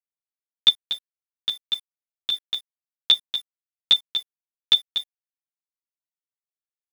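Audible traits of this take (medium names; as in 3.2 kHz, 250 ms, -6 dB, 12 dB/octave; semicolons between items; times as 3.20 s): chopped level 1.3 Hz, depth 60%, duty 90%; a quantiser's noise floor 8-bit, dither none; a shimmering, thickened sound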